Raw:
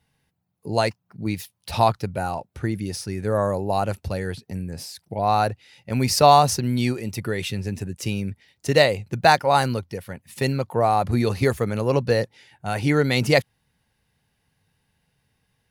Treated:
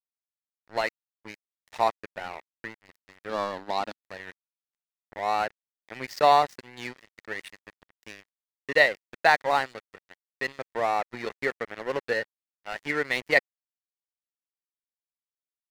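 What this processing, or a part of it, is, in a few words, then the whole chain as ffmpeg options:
pocket radio on a weak battery: -filter_complex "[0:a]highpass=370,lowpass=4k,aeval=exprs='sgn(val(0))*max(abs(val(0))-0.0335,0)':c=same,equalizer=f=1.9k:t=o:w=0.33:g=10,asettb=1/sr,asplit=3[a][b][c];[a]atrim=end=3.294[d];[b]atrim=start=3.29:end=4.05,asetpts=PTS-STARTPTS,afade=t=in:d=0.004:c=qsin,afade=t=out:st=0.756:d=0.004:c=qsin,equalizer=f=125:t=o:w=1:g=-6,equalizer=f=250:t=o:w=1:g=10,equalizer=f=500:t=o:w=1:g=-4,equalizer=f=1k:t=o:w=1:g=5,equalizer=f=2k:t=o:w=1:g=-7,equalizer=f=4k:t=o:w=1:g=9[e];[c]atrim=start=4.046[f];[d][e]acrossfade=d=0.004:c1=hsin:c2=qsin[g];[g][f]acrossfade=d=0.004:c1=qsin:c2=hsin,volume=-4dB"

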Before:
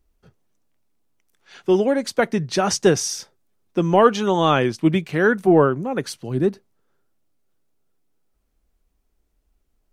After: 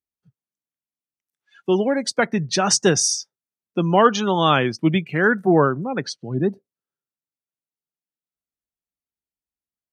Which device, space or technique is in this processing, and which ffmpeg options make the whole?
smiley-face EQ: -filter_complex "[0:a]asettb=1/sr,asplit=3[a][b][c];[a]atrim=end=5.954[d];[b]atrim=start=5.95:end=6.46,asetpts=PTS-STARTPTS,afade=t=in:d=0.004:c=qsin,afade=t=out:st=0.506:d=0.004:c=qsin,lowpass=6.6k[e];[c]atrim=start=6.456[f];[d][e]acrossfade=d=0.004:c1=hsin:c2=qsin[g];[g][f]acrossfade=d=0.004:c1=qsin:c2=hsin,afftdn=nr=24:nf=-36,highpass=140,lowshelf=f=200:g=3,equalizer=f=410:t=o:w=1.9:g=-5.5,highshelf=f=5.8k:g=7,volume=2.5dB"

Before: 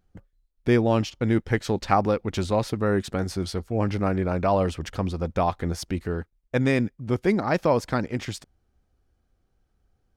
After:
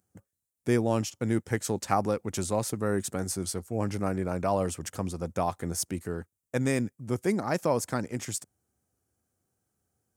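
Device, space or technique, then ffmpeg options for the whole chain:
budget condenser microphone: -af "highpass=f=89:w=0.5412,highpass=f=89:w=1.3066,highshelf=f=5.6k:t=q:w=1.5:g=13,volume=-5dB"

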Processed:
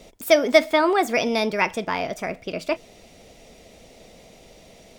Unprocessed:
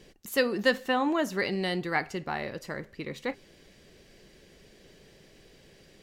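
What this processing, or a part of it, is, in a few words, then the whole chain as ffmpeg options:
nightcore: -af "equalizer=f=550:w=4.4:g=5.5,asetrate=53361,aresample=44100,volume=6.5dB"

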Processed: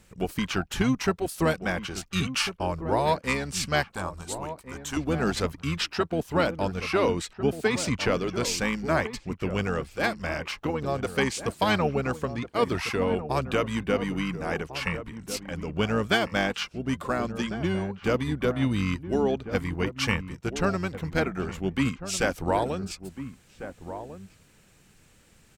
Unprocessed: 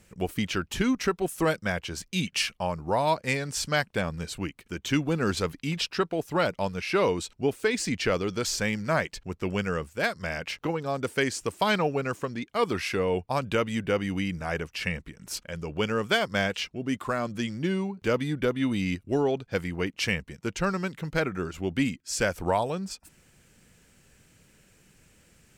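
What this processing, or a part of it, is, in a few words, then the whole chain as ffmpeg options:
octave pedal: -filter_complex "[0:a]asettb=1/sr,asplit=3[a][b][c];[a]atrim=end=3.884[d];[b]atrim=start=3.88:end=4.97,asetpts=PTS-STARTPTS,afade=t=in:d=0.004:c=qsin,afade=t=out:st=1.086:d=0.004:c=qsin,equalizer=f=125:t=o:w=1:g=-11,equalizer=f=250:t=o:w=1:g=-7,equalizer=f=500:t=o:w=1:g=-11,equalizer=f=1k:t=o:w=1:g=11,equalizer=f=2k:t=o:w=1:g=-10,equalizer=f=4k:t=o:w=1:g=-10,equalizer=f=8k:t=o:w=1:g=8[e];[c]atrim=start=4.966[f];[d][e]acrossfade=d=0.004:c1=hsin:c2=qsin[g];[g][f]acrossfade=d=0.004:c1=qsin:c2=hsin,asplit=2[h][i];[i]asetrate=22050,aresample=44100,atempo=2,volume=-7dB[j];[h][j]amix=inputs=2:normalize=0,asplit=2[k][l];[l]adelay=1399,volume=-11dB,highshelf=f=4k:g=-31.5[m];[k][m]amix=inputs=2:normalize=0"

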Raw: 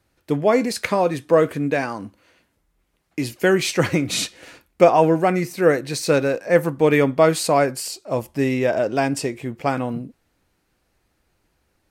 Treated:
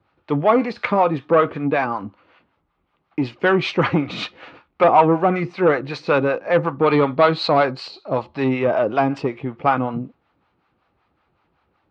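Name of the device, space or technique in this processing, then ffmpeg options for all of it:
guitar amplifier with harmonic tremolo: -filter_complex "[0:a]acrossover=split=570[a][b];[a]aeval=exprs='val(0)*(1-0.7/2+0.7/2*cos(2*PI*5.3*n/s))':c=same[c];[b]aeval=exprs='val(0)*(1-0.7/2-0.7/2*cos(2*PI*5.3*n/s))':c=same[d];[c][d]amix=inputs=2:normalize=0,asoftclip=type=tanh:threshold=-14.5dB,highpass=78,equalizer=f=840:t=q:w=4:g=6,equalizer=f=1.2k:t=q:w=4:g=9,equalizer=f=1.8k:t=q:w=4:g=-3,lowpass=f=3.5k:w=0.5412,lowpass=f=3.5k:w=1.3066,asettb=1/sr,asplit=3[e][f][g];[e]atrim=end=6.864[h];[f]atrim=start=6.86:end=8.49,asetpts=PTS-STARTPTS,afade=t=in:d=0.004:c=qsin,afade=t=out:st=1.626:d=0.004:c=qsin,equalizer=f=4.1k:t=o:w=0.24:g=15[i];[g]atrim=start=8.486[j];[h][i]acrossfade=d=0.004:c1=hsin:c2=qsin[k];[k][j]acrossfade=d=0.004:c1=qsin:c2=hsin,volume=5dB"

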